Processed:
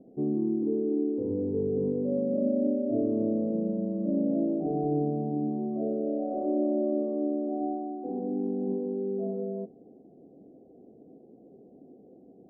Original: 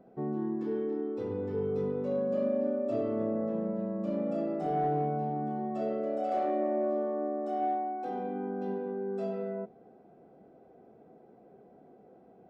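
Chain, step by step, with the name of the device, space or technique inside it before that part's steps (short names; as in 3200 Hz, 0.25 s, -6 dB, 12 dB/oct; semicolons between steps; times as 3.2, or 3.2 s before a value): under water (LPF 580 Hz 24 dB/oct; bell 280 Hz +8.5 dB 0.46 oct); gain +2 dB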